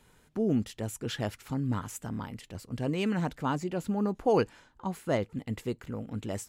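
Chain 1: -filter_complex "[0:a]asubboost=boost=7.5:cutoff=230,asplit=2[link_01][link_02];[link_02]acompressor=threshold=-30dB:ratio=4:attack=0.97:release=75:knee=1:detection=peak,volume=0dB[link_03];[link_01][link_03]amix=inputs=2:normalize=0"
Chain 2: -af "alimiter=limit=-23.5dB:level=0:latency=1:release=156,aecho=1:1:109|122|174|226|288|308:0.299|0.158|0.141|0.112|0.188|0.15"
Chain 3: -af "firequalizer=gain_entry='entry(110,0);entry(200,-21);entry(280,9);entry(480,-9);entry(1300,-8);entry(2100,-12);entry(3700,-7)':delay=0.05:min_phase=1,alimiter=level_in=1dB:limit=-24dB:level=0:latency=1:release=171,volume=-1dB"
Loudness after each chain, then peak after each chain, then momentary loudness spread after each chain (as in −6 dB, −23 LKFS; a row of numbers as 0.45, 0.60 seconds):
−23.0, −35.0, −37.5 LKFS; −7.5, −20.5, −25.0 dBFS; 9, 6, 9 LU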